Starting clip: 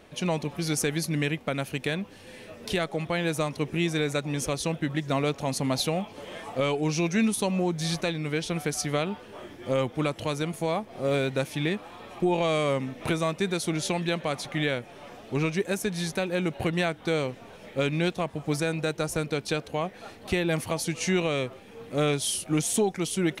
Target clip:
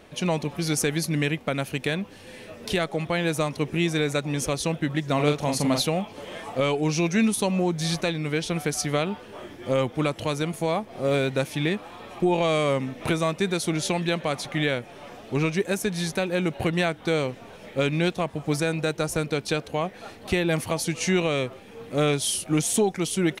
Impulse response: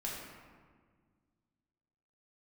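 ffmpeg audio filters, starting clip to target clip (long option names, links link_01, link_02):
-filter_complex "[0:a]asplit=3[link_01][link_02][link_03];[link_01]afade=type=out:start_time=5.18:duration=0.02[link_04];[link_02]asplit=2[link_05][link_06];[link_06]adelay=41,volume=-4.5dB[link_07];[link_05][link_07]amix=inputs=2:normalize=0,afade=type=in:start_time=5.18:duration=0.02,afade=type=out:start_time=5.81:duration=0.02[link_08];[link_03]afade=type=in:start_time=5.81:duration=0.02[link_09];[link_04][link_08][link_09]amix=inputs=3:normalize=0,volume=2.5dB"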